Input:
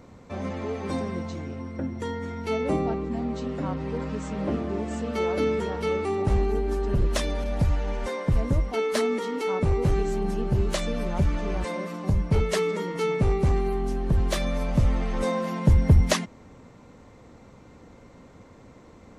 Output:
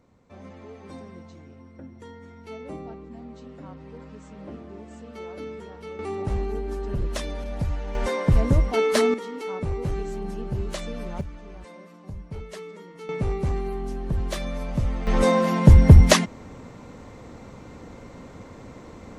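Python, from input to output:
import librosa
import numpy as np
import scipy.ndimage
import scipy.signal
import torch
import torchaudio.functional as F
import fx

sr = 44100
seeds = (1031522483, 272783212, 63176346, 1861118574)

y = fx.gain(x, sr, db=fx.steps((0.0, -12.0), (5.99, -4.0), (7.95, 4.5), (9.14, -5.0), (11.21, -14.0), (13.09, -3.5), (15.07, 7.0)))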